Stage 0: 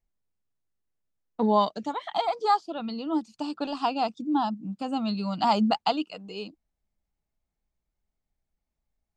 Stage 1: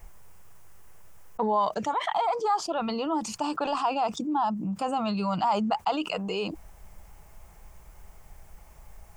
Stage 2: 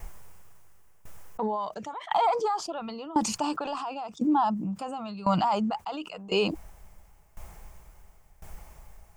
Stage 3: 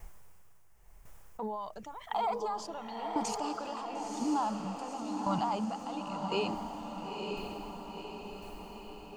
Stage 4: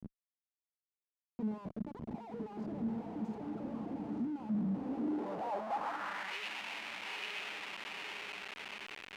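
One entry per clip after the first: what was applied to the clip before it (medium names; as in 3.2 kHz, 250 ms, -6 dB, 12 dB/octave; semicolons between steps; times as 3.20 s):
fifteen-band graphic EQ 250 Hz -12 dB, 1 kHz +5 dB, 4 kHz -10 dB; level flattener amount 70%; trim -6.5 dB
peak limiter -21 dBFS, peak gain reduction 6.5 dB; sawtooth tremolo in dB decaying 0.95 Hz, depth 19 dB; trim +7.5 dB
echo that smears into a reverb 952 ms, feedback 57%, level -4 dB; trim -8 dB
level rider gain up to 3 dB; Schmitt trigger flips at -43 dBFS; band-pass sweep 210 Hz -> 2.5 kHz, 4.80–6.41 s; trim +3.5 dB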